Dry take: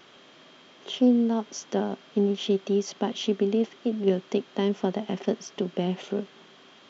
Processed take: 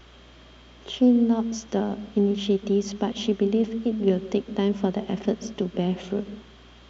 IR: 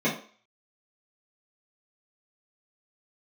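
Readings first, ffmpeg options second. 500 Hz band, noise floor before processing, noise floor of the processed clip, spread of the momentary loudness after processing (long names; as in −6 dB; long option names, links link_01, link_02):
+1.0 dB, −54 dBFS, −50 dBFS, 9 LU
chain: -filter_complex "[0:a]asplit=2[link_01][link_02];[1:a]atrim=start_sample=2205,adelay=135[link_03];[link_02][link_03]afir=irnorm=-1:irlink=0,volume=-32dB[link_04];[link_01][link_04]amix=inputs=2:normalize=0,aeval=exprs='val(0)+0.00112*(sin(2*PI*60*n/s)+sin(2*PI*2*60*n/s)/2+sin(2*PI*3*60*n/s)/3+sin(2*PI*4*60*n/s)/4+sin(2*PI*5*60*n/s)/5)':channel_layout=same,lowshelf=frequency=120:gain=11"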